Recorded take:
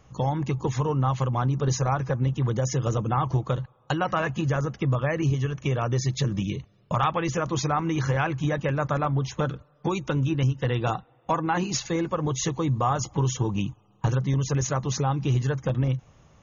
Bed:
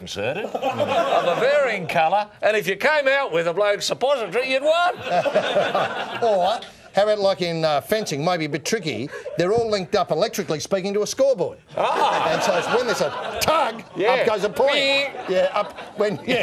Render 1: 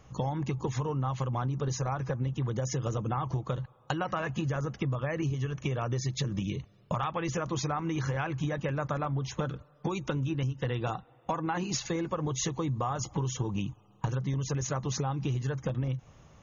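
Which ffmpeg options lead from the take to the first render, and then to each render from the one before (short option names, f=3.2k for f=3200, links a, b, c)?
-af "acompressor=threshold=-28dB:ratio=6"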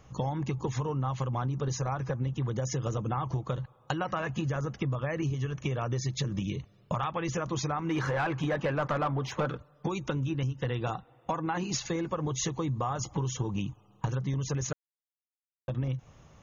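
-filter_complex "[0:a]asplit=3[a][b][c];[a]afade=t=out:st=7.89:d=0.02[d];[b]asplit=2[e][f];[f]highpass=f=720:p=1,volume=18dB,asoftclip=type=tanh:threshold=-18.5dB[g];[e][g]amix=inputs=2:normalize=0,lowpass=f=1.4k:p=1,volume=-6dB,afade=t=in:st=7.89:d=0.02,afade=t=out:st=9.56:d=0.02[h];[c]afade=t=in:st=9.56:d=0.02[i];[d][h][i]amix=inputs=3:normalize=0,asplit=3[j][k][l];[j]atrim=end=14.73,asetpts=PTS-STARTPTS,afade=t=out:st=14.726:d=0.004:c=hsin[m];[k]atrim=start=14.73:end=15.68,asetpts=PTS-STARTPTS,volume=0[n];[l]atrim=start=15.68,asetpts=PTS-STARTPTS,afade=t=in:d=0.004:c=hsin[o];[m][n][o]concat=n=3:v=0:a=1"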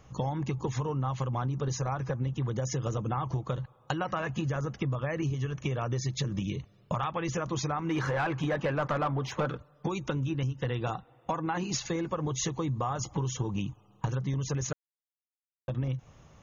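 -af anull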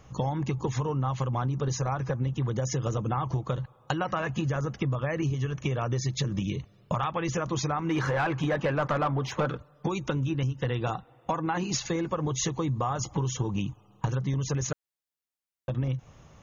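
-af "volume=2.5dB"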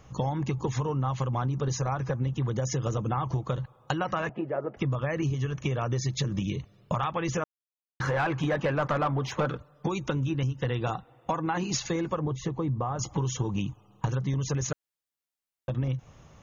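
-filter_complex "[0:a]asettb=1/sr,asplit=3[a][b][c];[a]atrim=end=4.294[d];[b]atrim=start=4.29:end=4.77,asetpts=PTS-STARTPTS,afade=t=in:d=0.004:c=qsin,afade=t=out:st=0.476:d=0.004:c=qsin,highpass=310,equalizer=f=370:t=q:w=4:g=7,equalizer=f=630:t=q:w=4:g=9,equalizer=f=1.1k:t=q:w=4:g=-7,equalizer=f=1.6k:t=q:w=4:g=-7,lowpass=f=2k:w=0.5412,lowpass=f=2k:w=1.3066[e];[c]atrim=start=4.766[f];[d][e]acrossfade=d=0.004:c1=hsin:c2=qsin[g];[g][f]acrossfade=d=0.004:c1=qsin:c2=hsin,asettb=1/sr,asplit=3[h][i][j];[h]atrim=end=12.194[k];[i]atrim=start=12.19:end=12.99,asetpts=PTS-STARTPTS,afade=t=in:d=0.004:c=qsin,afade=t=out:st=0.796:d=0.004:c=qsin,lowpass=f=1k:p=1[l];[j]atrim=start=12.986[m];[k][l]acrossfade=d=0.004:c1=hsin:c2=qsin[n];[n][m]acrossfade=d=0.004:c1=qsin:c2=hsin,asplit=3[o][p][q];[o]atrim=end=7.44,asetpts=PTS-STARTPTS,afade=t=out:st=7.436:d=0.004:c=hsin[r];[p]atrim=start=7.44:end=8,asetpts=PTS-STARTPTS,volume=0[s];[q]atrim=start=8,asetpts=PTS-STARTPTS,afade=t=in:d=0.004:c=hsin[t];[r][s][t]concat=n=3:v=0:a=1"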